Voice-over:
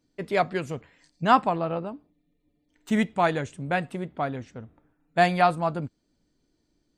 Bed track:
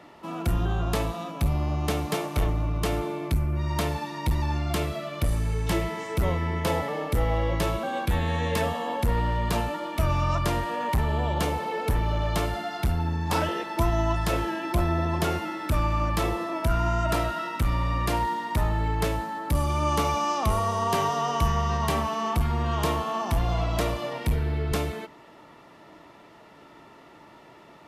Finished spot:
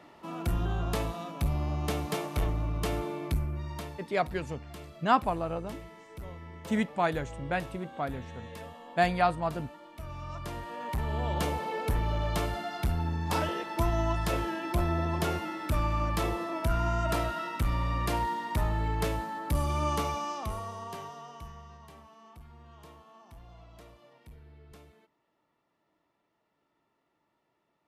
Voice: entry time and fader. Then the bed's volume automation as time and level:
3.80 s, -5.0 dB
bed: 3.36 s -4.5 dB
4.11 s -18 dB
10.03 s -18 dB
11.32 s -4 dB
19.83 s -4 dB
21.91 s -26.5 dB

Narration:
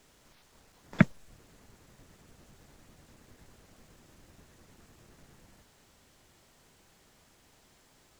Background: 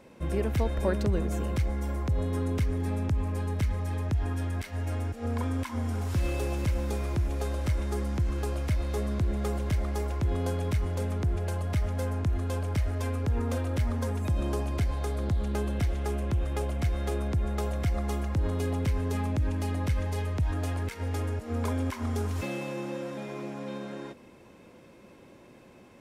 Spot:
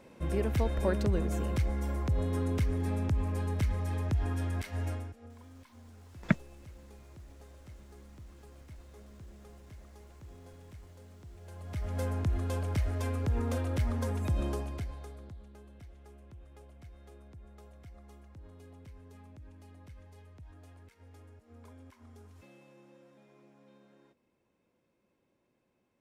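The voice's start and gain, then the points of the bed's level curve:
5.30 s, -5.0 dB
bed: 4.87 s -2 dB
5.36 s -23 dB
11.31 s -23 dB
11.99 s -2.5 dB
14.43 s -2.5 dB
15.52 s -23.5 dB

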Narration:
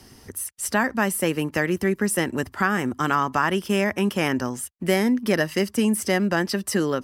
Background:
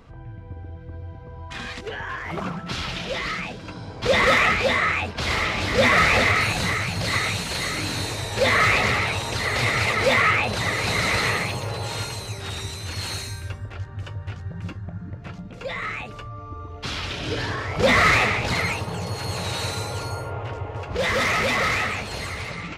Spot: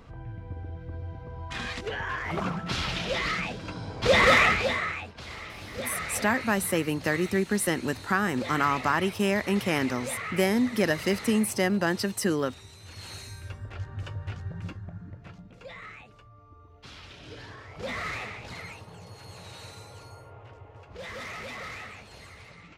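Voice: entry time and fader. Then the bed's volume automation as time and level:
5.50 s, -3.5 dB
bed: 4.4 s -1 dB
5.3 s -17 dB
12.67 s -17 dB
13.85 s -3 dB
14.46 s -3 dB
16.2 s -17 dB

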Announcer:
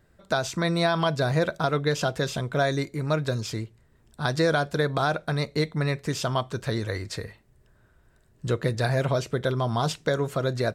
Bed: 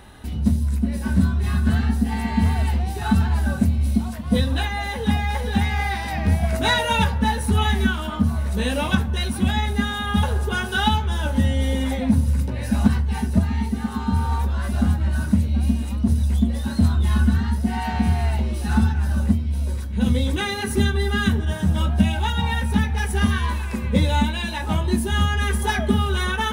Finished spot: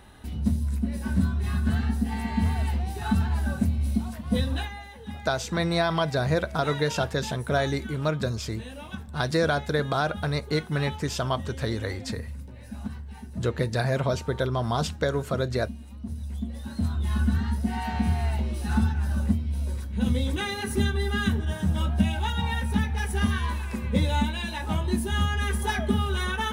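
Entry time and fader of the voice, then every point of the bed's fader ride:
4.95 s, -1.0 dB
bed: 4.55 s -5.5 dB
4.89 s -17.5 dB
15.88 s -17.5 dB
17.38 s -5 dB

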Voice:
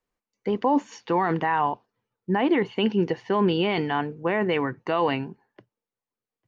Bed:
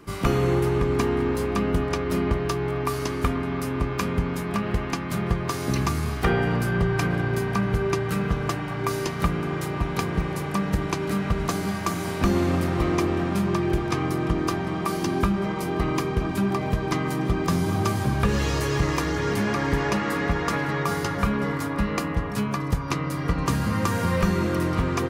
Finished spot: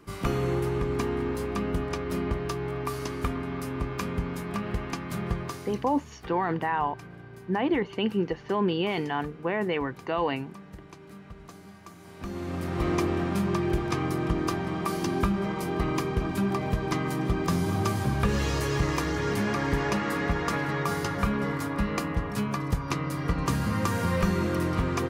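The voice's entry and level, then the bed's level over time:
5.20 s, -4.0 dB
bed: 5.41 s -5.5 dB
5.94 s -21 dB
11.98 s -21 dB
12.88 s -3 dB

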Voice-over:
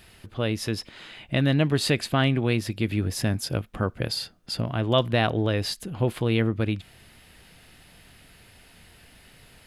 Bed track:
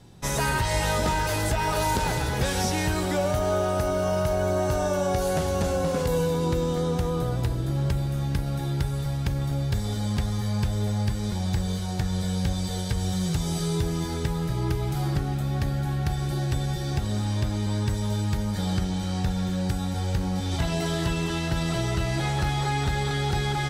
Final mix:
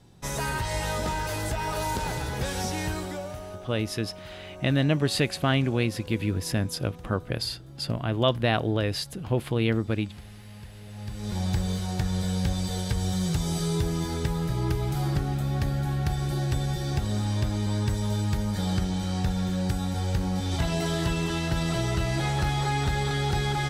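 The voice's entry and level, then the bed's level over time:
3.30 s, -1.5 dB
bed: 2.91 s -4.5 dB
3.66 s -19 dB
10.83 s -19 dB
11.38 s -0.5 dB

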